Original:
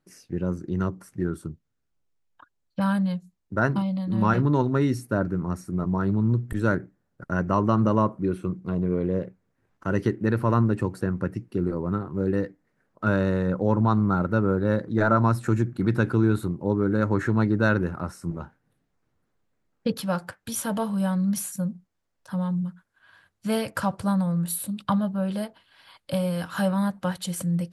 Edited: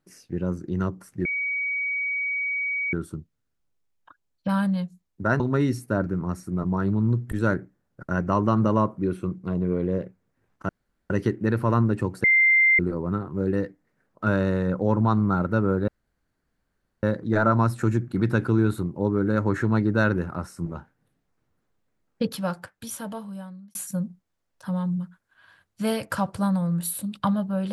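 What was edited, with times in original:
1.25 s: add tone 2.26 kHz -24 dBFS 1.68 s
3.72–4.61 s: delete
9.90 s: insert room tone 0.41 s
11.04–11.59 s: bleep 2.09 kHz -14.5 dBFS
14.68 s: insert room tone 1.15 s
19.90–21.40 s: fade out

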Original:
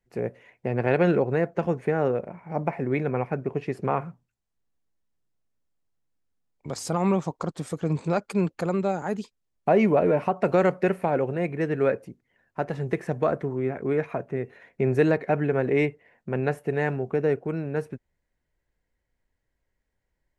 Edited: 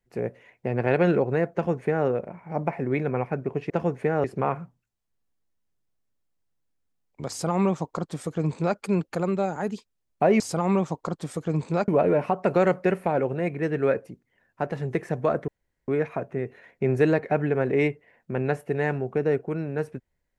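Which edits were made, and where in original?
1.53–2.07 s: copy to 3.70 s
6.76–8.24 s: copy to 9.86 s
13.46–13.86 s: room tone

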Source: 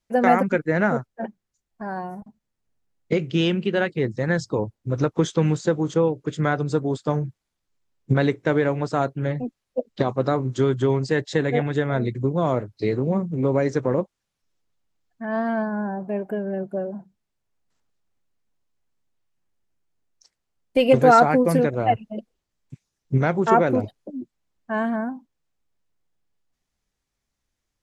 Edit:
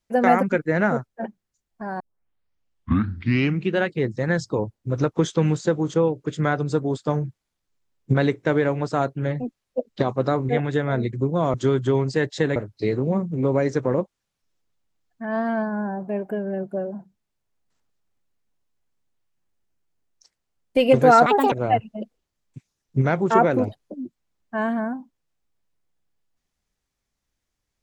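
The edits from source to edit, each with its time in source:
2.00 s: tape start 1.78 s
10.49–11.51 s: move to 12.56 s
21.26–21.68 s: speed 163%

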